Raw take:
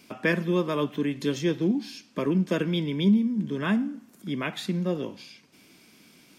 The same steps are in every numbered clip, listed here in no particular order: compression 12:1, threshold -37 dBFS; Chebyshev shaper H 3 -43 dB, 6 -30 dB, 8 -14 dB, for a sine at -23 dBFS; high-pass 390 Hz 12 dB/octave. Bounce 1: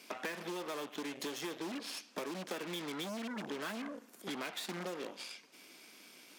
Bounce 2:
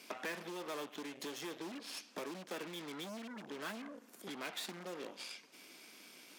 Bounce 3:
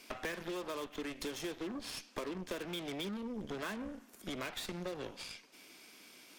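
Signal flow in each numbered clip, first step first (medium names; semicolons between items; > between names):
Chebyshev shaper > high-pass > compression; Chebyshev shaper > compression > high-pass; high-pass > Chebyshev shaper > compression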